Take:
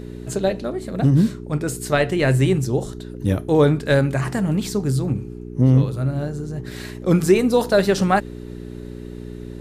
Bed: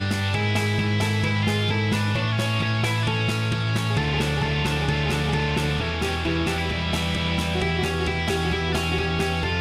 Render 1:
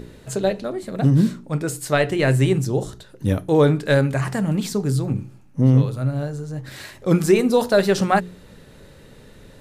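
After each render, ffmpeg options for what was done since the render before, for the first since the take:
-af "bandreject=f=60:t=h:w=4,bandreject=f=120:t=h:w=4,bandreject=f=180:t=h:w=4,bandreject=f=240:t=h:w=4,bandreject=f=300:t=h:w=4,bandreject=f=360:t=h:w=4,bandreject=f=420:t=h:w=4"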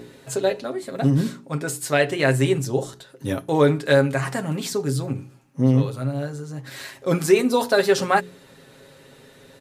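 -af "highpass=f=310:p=1,aecho=1:1:7.4:0.59"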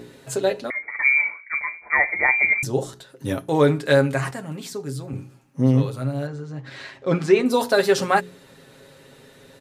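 -filter_complex "[0:a]asettb=1/sr,asplit=3[s0][s1][s2];[s0]atrim=end=0.704[s3];[s1]atrim=start=0.7:end=2.63,asetpts=PTS-STARTPTS,afade=t=in:d=0.004:c=qsin,afade=t=out:st=1.926:d=0.004:c=qsin,lowpass=f=2100:t=q:w=0.5098,lowpass=f=2100:t=q:w=0.6013,lowpass=f=2100:t=q:w=0.9,lowpass=f=2100:t=q:w=2.563,afreqshift=-2500[s4];[s2]atrim=start=2.626[s5];[s3][s4]acrossfade=d=0.004:c1=hsin:c2=qsin[s6];[s6][s5]acrossfade=d=0.004:c1=qsin:c2=hsin,asettb=1/sr,asplit=3[s7][s8][s9];[s7]atrim=end=6.274[s10];[s8]atrim=start=6.27:end=7.46,asetpts=PTS-STARTPTS,afade=t=in:d=0.004:c=qsin,afade=t=out:st=1.186:d=0.004:c=qsin,lowpass=4000[s11];[s9]atrim=start=7.456[s12];[s10][s11]acrossfade=d=0.004:c1=hsin:c2=qsin[s13];[s13][s12]acrossfade=d=0.004:c1=qsin:c2=hsin,asplit=3[s14][s15][s16];[s14]atrim=end=4.312[s17];[s15]atrim=start=4.308:end=5.132,asetpts=PTS-STARTPTS,volume=0.473[s18];[s16]atrim=start=5.128[s19];[s17][s18]acrossfade=d=0.004:c1=hsin:c2=hsin[s20];[s20][s19]acrossfade=d=0.004:c1=hsin:c2=hsin"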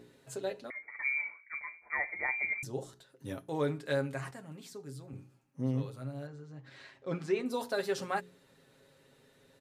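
-af "volume=0.178"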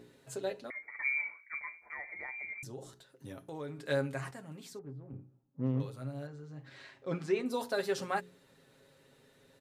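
-filter_complex "[0:a]asettb=1/sr,asplit=3[s0][s1][s2];[s0]atrim=end=1.864[s3];[s1]atrim=start=1.86:end=3.79,asetpts=PTS-STARTPTS,afade=t=in:d=0.004:c=qsin,afade=t=out:st=1.926:d=0.004:c=qsin,acompressor=threshold=0.00708:ratio=2.5:attack=3.2:release=140:knee=1:detection=peak[s4];[s2]atrim=start=3.786[s5];[s3][s4]acrossfade=d=0.004:c1=hsin:c2=qsin[s6];[s6][s5]acrossfade=d=0.004:c1=qsin:c2=hsin,asettb=1/sr,asplit=3[s7][s8][s9];[s7]atrim=end=4.794[s10];[s8]atrim=start=4.79:end=5.8,asetpts=PTS-STARTPTS,afade=t=in:d=0.004:c=qsin,afade=t=out:st=1.006:d=0.004:c=qsin,adynamicsmooth=sensitivity=5.5:basefreq=630[s11];[s9]atrim=start=5.796[s12];[s10][s11]acrossfade=d=0.004:c1=hsin:c2=qsin[s13];[s13][s12]acrossfade=d=0.004:c1=qsin:c2=hsin,asettb=1/sr,asplit=3[s14][s15][s16];[s14]atrim=end=6.394[s17];[s15]atrim=start=6.39:end=7.07,asetpts=PTS-STARTPTS,afade=t=in:d=0.004:c=qsin,afade=t=out:st=0.676:d=0.004:c=qsin,asplit=2[s18][s19];[s19]adelay=40,volume=0.224[s20];[s18][s20]amix=inputs=2:normalize=0,atrim=end_sample=29988[s21];[s16]atrim=start=7.066[s22];[s17][s21]acrossfade=d=0.004:c1=hsin:c2=qsin[s23];[s23][s22]acrossfade=d=0.004:c1=qsin:c2=hsin"

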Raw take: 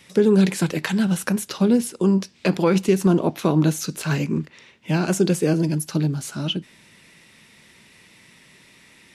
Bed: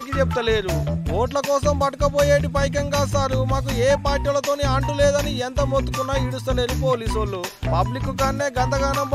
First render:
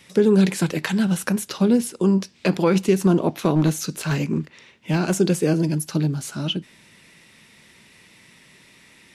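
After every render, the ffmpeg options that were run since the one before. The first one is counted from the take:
-filter_complex "[0:a]asettb=1/sr,asplit=3[s0][s1][s2];[s0]atrim=end=3.284[s3];[s1]atrim=start=3.28:end=5.17,asetpts=PTS-STARTPTS,afade=t=in:d=0.004:c=qsin,afade=t=out:st=1.886:d=0.004:c=qsin,aeval=exprs='clip(val(0),-1,0.133)':c=same[s4];[s2]atrim=start=5.166[s5];[s3][s4]acrossfade=d=0.004:c1=hsin:c2=qsin[s6];[s6][s5]acrossfade=d=0.004:c1=qsin:c2=hsin"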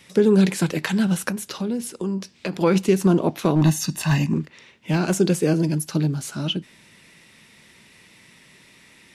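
-filter_complex "[0:a]asettb=1/sr,asplit=3[s0][s1][s2];[s0]atrim=end=1.304[s3];[s1]atrim=start=1.3:end=2.61,asetpts=PTS-STARTPTS,afade=t=in:d=0.004:c=qsin,afade=t=out:st=1.306:d=0.004:c=qsin,acompressor=threshold=0.0398:ratio=2:attack=3.2:release=140:knee=1:detection=peak[s4];[s2]atrim=start=2.606[s5];[s3][s4]acrossfade=d=0.004:c1=hsin:c2=qsin[s6];[s6][s5]acrossfade=d=0.004:c1=qsin:c2=hsin,asettb=1/sr,asplit=3[s7][s8][s9];[s7]atrim=end=3.614[s10];[s8]atrim=start=3.61:end=4.34,asetpts=PTS-STARTPTS,afade=t=in:d=0.004:c=qsin,afade=t=out:st=0.726:d=0.004:c=qsin,aecho=1:1:1.1:0.82,atrim=end_sample=32193[s11];[s9]atrim=start=4.336[s12];[s10][s11]acrossfade=d=0.004:c1=hsin:c2=qsin[s13];[s13][s12]acrossfade=d=0.004:c1=qsin:c2=hsin"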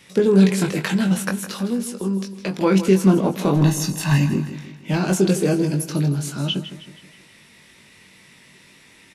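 -filter_complex "[0:a]asplit=2[s0][s1];[s1]adelay=21,volume=0.562[s2];[s0][s2]amix=inputs=2:normalize=0,aecho=1:1:159|318|477|636|795:0.237|0.111|0.0524|0.0246|0.0116"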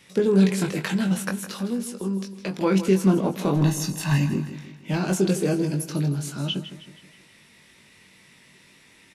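-af "volume=0.631"

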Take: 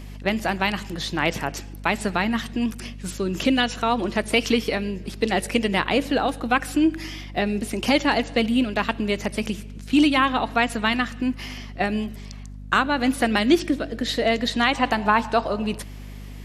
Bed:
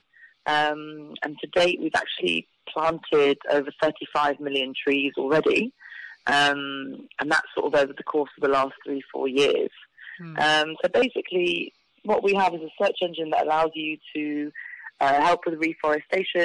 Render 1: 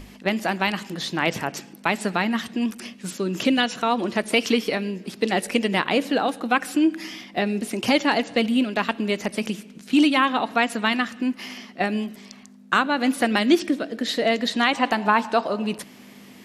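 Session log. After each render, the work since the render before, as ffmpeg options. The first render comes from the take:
-af "bandreject=f=50:t=h:w=6,bandreject=f=100:t=h:w=6,bandreject=f=150:t=h:w=6"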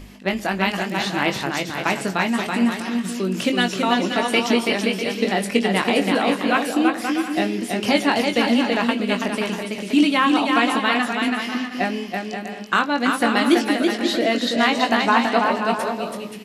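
-filter_complex "[0:a]asplit=2[s0][s1];[s1]adelay=21,volume=0.447[s2];[s0][s2]amix=inputs=2:normalize=0,aecho=1:1:330|528|646.8|718.1|760.8:0.631|0.398|0.251|0.158|0.1"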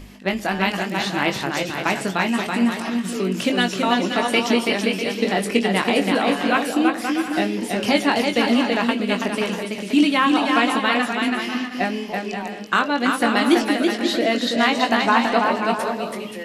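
-filter_complex "[1:a]volume=0.237[s0];[0:a][s0]amix=inputs=2:normalize=0"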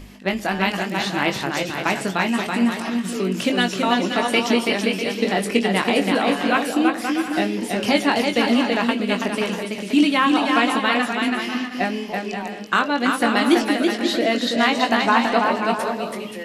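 -af anull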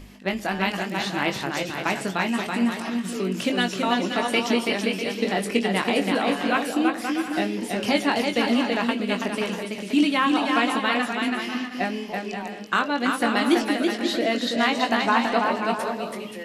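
-af "volume=0.668"

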